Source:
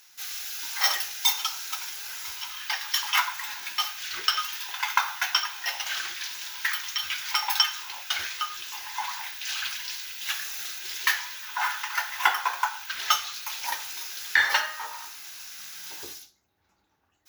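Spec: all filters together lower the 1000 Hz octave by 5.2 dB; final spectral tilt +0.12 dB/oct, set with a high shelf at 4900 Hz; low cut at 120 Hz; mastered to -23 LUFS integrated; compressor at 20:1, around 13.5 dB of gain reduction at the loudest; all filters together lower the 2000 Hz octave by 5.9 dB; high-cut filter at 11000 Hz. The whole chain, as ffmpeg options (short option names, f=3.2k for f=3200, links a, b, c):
-af "highpass=120,lowpass=11k,equalizer=f=1k:t=o:g=-4.5,equalizer=f=2k:t=o:g=-4.5,highshelf=f=4.9k:g=-9,acompressor=threshold=-37dB:ratio=20,volume=18dB"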